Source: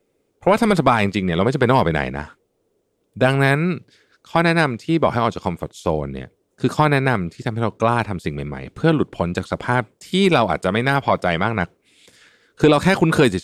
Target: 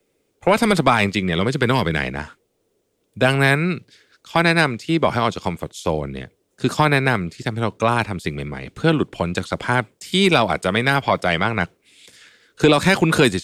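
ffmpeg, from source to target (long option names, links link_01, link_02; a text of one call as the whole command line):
ffmpeg -i in.wav -filter_complex "[0:a]asettb=1/sr,asplit=3[link_01][link_02][link_03];[link_01]atrim=end=1.394[link_04];[link_02]atrim=start=1.39:end=2.04,asetpts=PTS-STARTPTS,afade=type=in:duration=0.004:curve=qsin,afade=type=out:start_time=0.646:duration=0.004:curve=qsin,equalizer=frequency=730:width_type=o:width=1.1:gain=-6.5[link_05];[link_03]atrim=start=2.036[link_06];[link_04][link_05]acrossfade=duration=0.004:curve1=hsin:curve2=qsin[link_07];[link_07][link_06]acrossfade=duration=0.004:curve1=qsin:curve2=hsin,acrossover=split=210|1200|1500[link_08][link_09][link_10][link_11];[link_11]acontrast=39[link_12];[link_08][link_09][link_10][link_12]amix=inputs=4:normalize=0,volume=-1dB" out.wav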